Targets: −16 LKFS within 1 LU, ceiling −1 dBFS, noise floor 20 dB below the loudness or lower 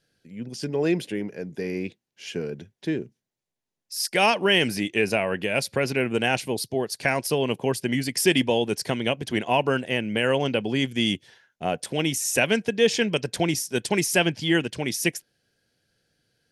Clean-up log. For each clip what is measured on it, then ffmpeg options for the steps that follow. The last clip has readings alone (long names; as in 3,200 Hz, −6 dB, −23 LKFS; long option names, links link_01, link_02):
integrated loudness −24.5 LKFS; sample peak −5.0 dBFS; target loudness −16.0 LKFS
→ -af "volume=8.5dB,alimiter=limit=-1dB:level=0:latency=1"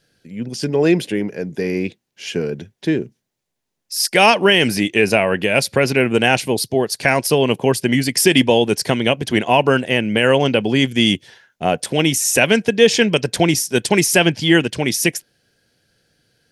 integrated loudness −16.5 LKFS; sample peak −1.0 dBFS; background noise floor −78 dBFS